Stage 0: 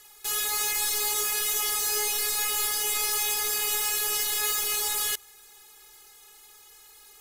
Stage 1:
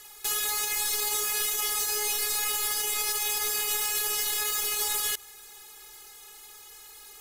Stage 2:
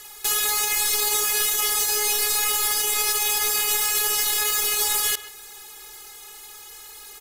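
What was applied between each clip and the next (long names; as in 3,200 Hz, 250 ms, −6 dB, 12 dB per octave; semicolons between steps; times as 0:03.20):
brickwall limiter −23.5 dBFS, peak gain reduction 9.5 dB; level +4 dB
far-end echo of a speakerphone 130 ms, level −12 dB; level +6 dB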